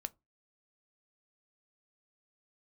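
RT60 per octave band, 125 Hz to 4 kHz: 0.30, 0.30, 0.25, 0.20, 0.15, 0.15 seconds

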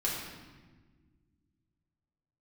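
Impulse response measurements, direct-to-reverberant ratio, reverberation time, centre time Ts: −6.5 dB, non-exponential decay, 70 ms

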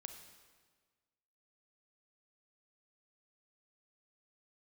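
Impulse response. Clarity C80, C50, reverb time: 8.5 dB, 7.0 dB, 1.5 s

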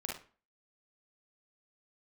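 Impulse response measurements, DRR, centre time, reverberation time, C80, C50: −3.0 dB, 39 ms, 0.40 s, 12.0 dB, 3.5 dB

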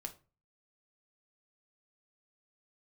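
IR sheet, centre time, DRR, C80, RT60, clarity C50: 6 ms, 4.0 dB, 21.5 dB, 0.35 s, 15.0 dB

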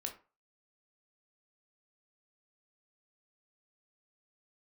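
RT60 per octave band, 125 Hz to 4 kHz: 0.35, 0.30, 0.35, 0.35, 0.30, 0.20 seconds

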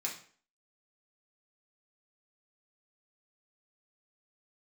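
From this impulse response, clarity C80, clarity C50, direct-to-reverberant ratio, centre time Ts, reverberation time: 12.0 dB, 7.5 dB, −3.0 dB, 23 ms, 0.45 s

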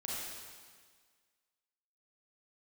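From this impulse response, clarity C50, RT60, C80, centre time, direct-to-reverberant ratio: −3.5 dB, 1.7 s, −0.5 dB, 124 ms, −6.0 dB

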